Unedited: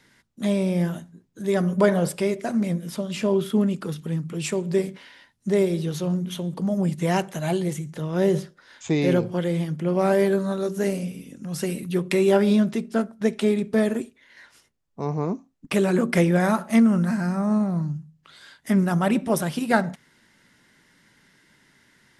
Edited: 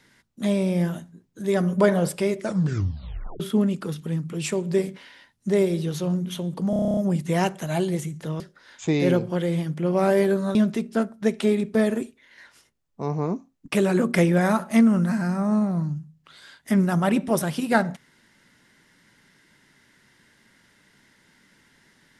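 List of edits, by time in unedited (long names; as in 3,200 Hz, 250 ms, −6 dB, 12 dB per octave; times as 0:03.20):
0:02.39: tape stop 1.01 s
0:06.70: stutter 0.03 s, 10 plays
0:08.13–0:08.42: remove
0:10.57–0:12.54: remove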